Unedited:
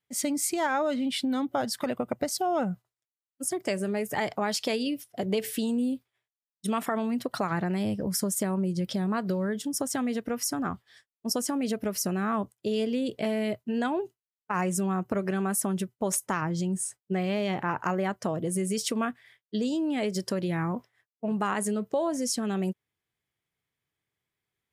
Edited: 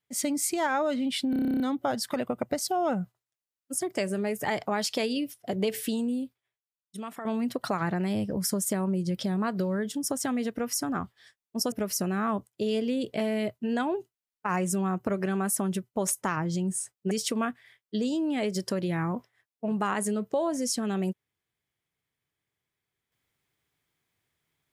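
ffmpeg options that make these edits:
-filter_complex "[0:a]asplit=14[a][b][c][d][e][f][g][h][i][j][k][l][m][n];[a]atrim=end=1.332[o];[b]atrim=start=1.298:end=1.332[p];[c]atrim=start=1.298:end=1.332[q];[d]atrim=start=1.298:end=1.332[r];[e]atrim=start=1.298:end=1.332[s];[f]atrim=start=1.298:end=1.332[t];[g]atrim=start=1.298:end=1.332[u];[h]atrim=start=1.298:end=1.332[v];[i]atrim=start=1.298:end=1.332[w];[j]atrim=start=1.298:end=1.332[x];[k]atrim=start=1.298:end=6.95,asetpts=PTS-STARTPTS,afade=t=out:st=4.272:d=1.38:c=qua:silence=0.316228[y];[l]atrim=start=6.95:end=11.422,asetpts=PTS-STARTPTS,afade=t=in:d=0.004:c=hsin:silence=0.316228[z];[m]atrim=start=11.768:end=17.162[aa];[n]atrim=start=18.708[ab];[o][p]acrossfade=d=0.004:c1=hsin:c2=hsin[ac];[ac][q]acrossfade=d=0.004:c1=hsin:c2=hsin[ad];[ad][r]acrossfade=d=0.004:c1=hsin:c2=hsin[ae];[ae][s]acrossfade=d=0.004:c1=hsin:c2=hsin[af];[af][t]acrossfade=d=0.004:c1=hsin:c2=hsin[ag];[ag][u]acrossfade=d=0.004:c1=hsin:c2=hsin[ah];[ah][v]acrossfade=d=0.004:c1=hsin:c2=hsin[ai];[ai][w]acrossfade=d=0.004:c1=hsin:c2=hsin[aj];[aj][x]acrossfade=d=0.004:c1=hsin:c2=hsin[ak];[y][z]concat=n=2:v=0:a=1[al];[ak][al]acrossfade=d=0.004:c1=hsin:c2=hsin[am];[am][aa]acrossfade=d=0.004:c1=hsin:c2=hsin[an];[an][ab]acrossfade=d=0.004:c1=hsin:c2=hsin"

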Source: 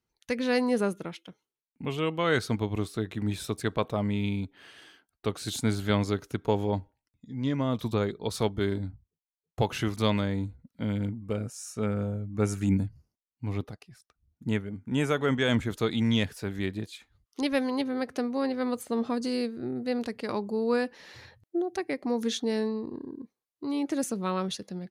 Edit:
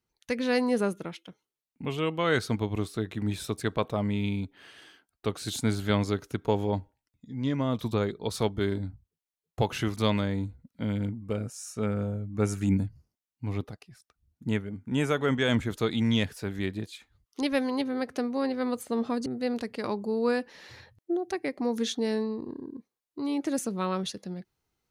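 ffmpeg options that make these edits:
-filter_complex "[0:a]asplit=2[a][b];[a]atrim=end=19.262[c];[b]atrim=start=19.708[d];[c][d]acrossfade=d=0.004:c1=hsin:c2=hsin"

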